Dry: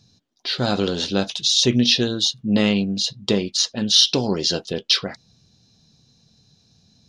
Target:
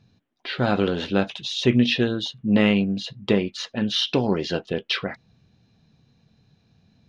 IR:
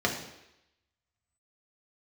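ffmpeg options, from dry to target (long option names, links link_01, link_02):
-af "highshelf=frequency=3500:width_type=q:width=1.5:gain=-14,aeval=exprs='0.473*(cos(1*acos(clip(val(0)/0.473,-1,1)))-cos(1*PI/2))+0.00299*(cos(7*acos(clip(val(0)/0.473,-1,1)))-cos(7*PI/2))':channel_layout=same"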